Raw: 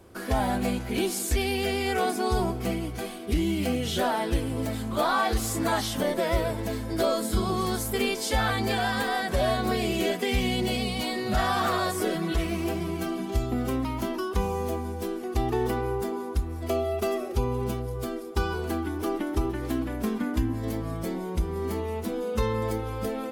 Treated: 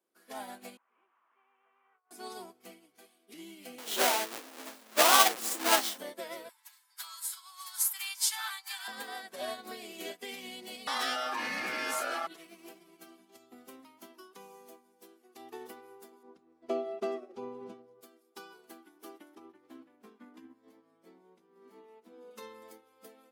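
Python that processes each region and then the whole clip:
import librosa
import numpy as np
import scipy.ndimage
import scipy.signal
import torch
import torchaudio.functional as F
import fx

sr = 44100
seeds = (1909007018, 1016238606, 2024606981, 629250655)

y = fx.chain(x, sr, fx.delta_mod(bps=16000, step_db=-30.0),
    fx.bandpass_q(hz=1100.0, q=4.7),
    fx.over_compress(threshold_db=-41.0, ratio=-0.5), at=(0.77, 2.11))
y = fx.chain(y, sr, fx.halfwave_hold(),
    fx.highpass(hz=310.0, slope=12),
    fx.doubler(ms=31.0, db=-12), at=(3.78, 5.98))
y = fx.chain(y, sr, fx.steep_highpass(hz=820.0, slope=96),
    fx.high_shelf(hz=4600.0, db=6.5), at=(6.49, 8.88))
y = fx.chain(y, sr, fx.ring_mod(carrier_hz=1000.0),
    fx.high_shelf(hz=8300.0, db=-10.0),
    fx.env_flatten(amount_pct=100), at=(10.87, 12.27))
y = fx.chain(y, sr, fx.lowpass(hz=5500.0, slope=12),
    fx.tilt_shelf(db=7.0, hz=1300.0), at=(16.23, 18.01))
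y = fx.chain(y, sr, fx.lowpass(hz=2000.0, slope=6),
    fx.doubler(ms=16.0, db=-9.0), at=(19.35, 22.31))
y = scipy.signal.sosfilt(scipy.signal.butter(4, 210.0, 'highpass', fs=sr, output='sos'), y)
y = fx.tilt_eq(y, sr, slope=2.0)
y = fx.upward_expand(y, sr, threshold_db=-37.0, expansion=2.5)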